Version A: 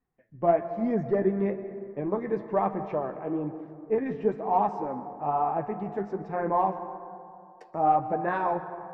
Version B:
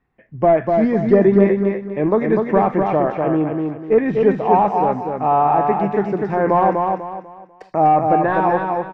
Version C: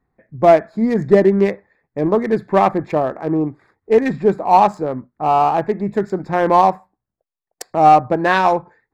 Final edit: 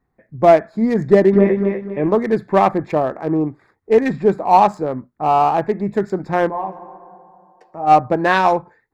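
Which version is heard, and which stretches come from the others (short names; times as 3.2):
C
1.33–2.12 from B
6.48–7.89 from A, crossfade 0.06 s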